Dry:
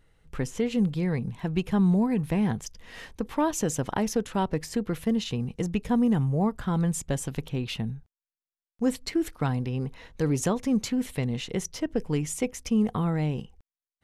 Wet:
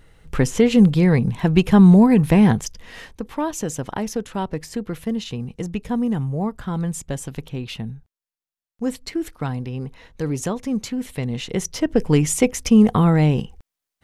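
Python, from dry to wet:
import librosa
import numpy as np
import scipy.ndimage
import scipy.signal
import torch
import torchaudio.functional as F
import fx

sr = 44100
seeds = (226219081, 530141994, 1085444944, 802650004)

y = fx.gain(x, sr, db=fx.line((2.48, 11.5), (3.22, 1.0), (11.04, 1.0), (12.1, 11.0)))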